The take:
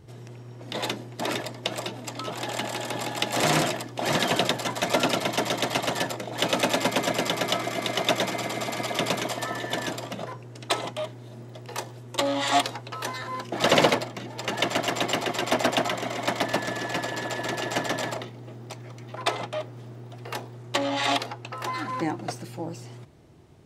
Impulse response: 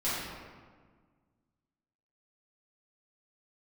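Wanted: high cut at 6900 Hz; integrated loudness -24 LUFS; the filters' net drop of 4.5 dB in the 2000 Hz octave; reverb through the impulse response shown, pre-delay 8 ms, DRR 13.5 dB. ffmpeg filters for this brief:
-filter_complex "[0:a]lowpass=6.9k,equalizer=f=2k:t=o:g=-5.5,asplit=2[a][b];[1:a]atrim=start_sample=2205,adelay=8[c];[b][c]afir=irnorm=-1:irlink=0,volume=-22dB[d];[a][d]amix=inputs=2:normalize=0,volume=4.5dB"

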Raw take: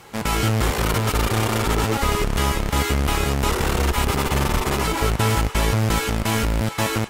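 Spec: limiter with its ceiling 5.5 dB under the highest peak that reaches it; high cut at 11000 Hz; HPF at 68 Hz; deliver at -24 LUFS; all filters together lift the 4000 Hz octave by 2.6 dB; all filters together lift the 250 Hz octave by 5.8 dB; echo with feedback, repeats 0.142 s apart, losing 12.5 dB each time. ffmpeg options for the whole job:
-af "highpass=68,lowpass=11k,equalizer=f=250:t=o:g=7.5,equalizer=f=4k:t=o:g=3.5,alimiter=limit=-11dB:level=0:latency=1,aecho=1:1:142|284|426:0.237|0.0569|0.0137,volume=-2dB"

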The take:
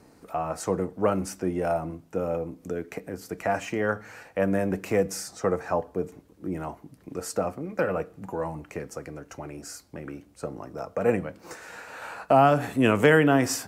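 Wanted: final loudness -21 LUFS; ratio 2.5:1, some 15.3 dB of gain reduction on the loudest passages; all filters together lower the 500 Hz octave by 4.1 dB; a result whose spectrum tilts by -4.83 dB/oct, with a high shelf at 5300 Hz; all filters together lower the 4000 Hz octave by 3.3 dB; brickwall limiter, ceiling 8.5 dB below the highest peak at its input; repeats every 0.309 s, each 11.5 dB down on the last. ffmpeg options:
-af "equalizer=f=500:t=o:g=-5,equalizer=f=4k:t=o:g=-7,highshelf=f=5.3k:g=3.5,acompressor=threshold=-40dB:ratio=2.5,alimiter=level_in=5dB:limit=-24dB:level=0:latency=1,volume=-5dB,aecho=1:1:309|618|927:0.266|0.0718|0.0194,volume=20.5dB"

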